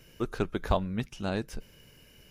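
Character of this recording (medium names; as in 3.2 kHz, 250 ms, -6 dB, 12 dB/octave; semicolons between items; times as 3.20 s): noise floor -57 dBFS; spectral tilt -5.5 dB/octave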